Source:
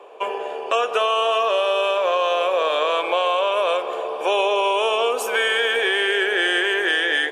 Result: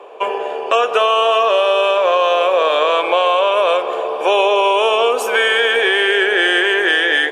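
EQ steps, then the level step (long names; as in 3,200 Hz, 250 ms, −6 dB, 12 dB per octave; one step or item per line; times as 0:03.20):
high-shelf EQ 5,700 Hz −5.5 dB
+6.0 dB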